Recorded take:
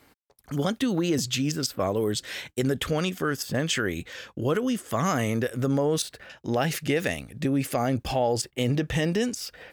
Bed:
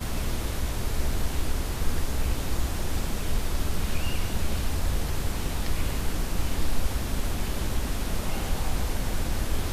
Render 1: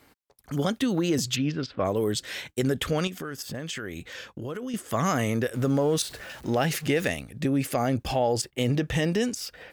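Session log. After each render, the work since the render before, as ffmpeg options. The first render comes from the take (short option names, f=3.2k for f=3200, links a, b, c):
-filter_complex "[0:a]asplit=3[a][b][c];[a]afade=t=out:st=1.35:d=0.02[d];[b]lowpass=f=3.8k:w=0.5412,lowpass=f=3.8k:w=1.3066,afade=t=in:st=1.35:d=0.02,afade=t=out:st=1.84:d=0.02[e];[c]afade=t=in:st=1.84:d=0.02[f];[d][e][f]amix=inputs=3:normalize=0,asettb=1/sr,asplit=3[g][h][i];[g]atrim=end=3.074[j];[h]atrim=start=3.07:end=4.74,asetpts=PTS-STARTPTS,afade=t=in:d=0.004:c=qsin,afade=t=out:st=1.666:d=0.004:c=qsin,acompressor=threshold=-33dB:ratio=3:attack=3.2:release=140:knee=1:detection=peak[k];[i]atrim=start=4.736[l];[j][k]acrossfade=d=0.004:c1=hsin:c2=qsin[m];[m][l]acrossfade=d=0.004:c1=qsin:c2=hsin,asettb=1/sr,asplit=3[n][o][p];[n]atrim=end=5.544[q];[o]atrim=start=5.54:end=7.09,asetpts=PTS-STARTPTS,afade=t=in:d=0.004:c=qsin,afade=t=out:st=1.546:d=0.004:c=qsin,aeval=exprs='val(0)+0.5*0.00891*sgn(val(0))':c=same[r];[p]atrim=start=7.086[s];[q][r]acrossfade=d=0.004:c1=hsin:c2=qsin[t];[t][s]acrossfade=d=0.004:c1=qsin:c2=hsin"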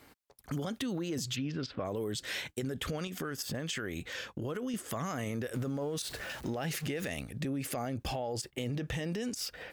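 -af "alimiter=limit=-23dB:level=0:latency=1:release=60,acompressor=threshold=-33dB:ratio=3"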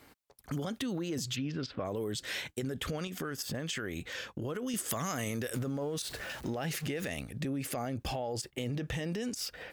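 -filter_complex "[0:a]asettb=1/sr,asplit=3[a][b][c];[a]atrim=end=4.664[d];[b]atrim=start=4.66:end=5.59,asetpts=PTS-STARTPTS,afade=t=in:d=0.004:c=qsin,afade=t=out:st=0.926:d=0.004:c=qsin,highshelf=f=3k:g=9.5[e];[c]atrim=start=5.586[f];[d][e]acrossfade=d=0.004:c1=hsin:c2=qsin[g];[g][f]acrossfade=d=0.004:c1=qsin:c2=hsin"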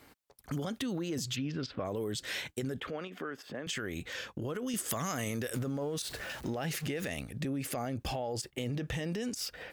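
-filter_complex "[0:a]asettb=1/sr,asplit=3[a][b][c];[a]atrim=end=2.804[d];[b]atrim=start=2.8:end=3.67,asetpts=PTS-STARTPTS,afade=t=in:d=0.004:c=qsin,afade=t=out:st=0.866:d=0.004:c=qsin,acrossover=split=230 3200:gain=0.158 1 0.1[e][f][g];[e][f][g]amix=inputs=3:normalize=0[h];[c]atrim=start=3.666[i];[d][h]acrossfade=d=0.004:c1=hsin:c2=qsin[j];[j][i]acrossfade=d=0.004:c1=qsin:c2=hsin"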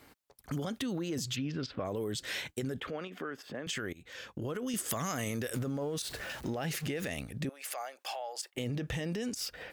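-filter_complex "[0:a]asettb=1/sr,asplit=3[a][b][c];[a]atrim=end=7.494[d];[b]atrim=start=7.49:end=8.55,asetpts=PTS-STARTPTS,afade=t=in:d=0.004:c=qsin,afade=t=out:st=1.056:d=0.004:c=qsin,highpass=f=640:w=0.5412,highpass=f=640:w=1.3066[e];[c]atrim=start=8.546[f];[d][e]acrossfade=d=0.004:c1=hsin:c2=qsin[g];[g][f]acrossfade=d=0.004:c1=qsin:c2=hsin,asplit=2[h][i];[h]atrim=end=3.93,asetpts=PTS-STARTPTS,afade=t=out:st=3.926:d=0.004:c=hsin:silence=0.0841395[j];[i]atrim=start=3.93,asetpts=PTS-STARTPTS,afade=t=in:d=0.51:silence=0.0841395[k];[j][k]concat=n=2:v=0:a=1"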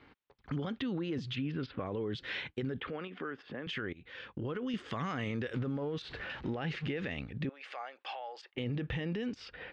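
-af "lowpass=f=3.5k:w=0.5412,lowpass=f=3.5k:w=1.3066,equalizer=f=640:w=3.8:g=-6.5"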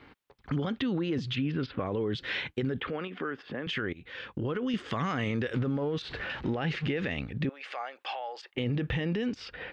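-af "volume=5.5dB"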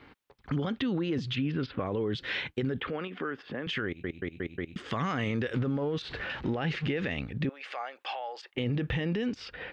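-filter_complex "[0:a]asplit=6[a][b][c][d][e][f];[a]atrim=end=4.042[g];[b]atrim=start=3.858:end=4.042[h];[c]atrim=start=3.858:end=4.042[i];[d]atrim=start=3.858:end=4.042[j];[e]atrim=start=3.858:end=4.042[k];[f]atrim=start=4.758[l];[g][h]acrossfade=d=0.004:c1=hsin:c2=hsin[m];[m][i]acrossfade=d=0.004:c1=hsin:c2=hsin[n];[n][j]acrossfade=d=0.004:c1=hsin:c2=hsin[o];[o][k]acrossfade=d=0.004:c1=hsin:c2=hsin[p];[p][l]acrossfade=d=0.004:c1=hsin:c2=hsin"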